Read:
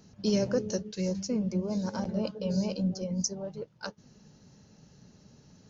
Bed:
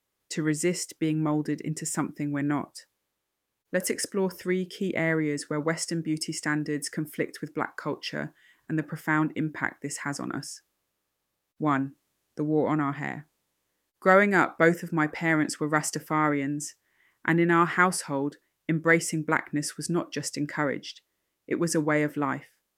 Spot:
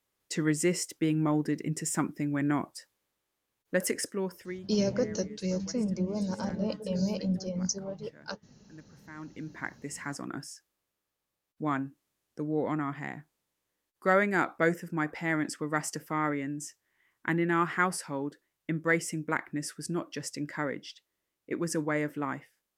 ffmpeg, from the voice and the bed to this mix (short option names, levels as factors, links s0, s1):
-filter_complex "[0:a]adelay=4450,volume=0.944[s0];[1:a]volume=6.31,afade=t=out:st=3.76:d=0.97:silence=0.0841395,afade=t=in:st=9.14:d=0.72:silence=0.141254[s1];[s0][s1]amix=inputs=2:normalize=0"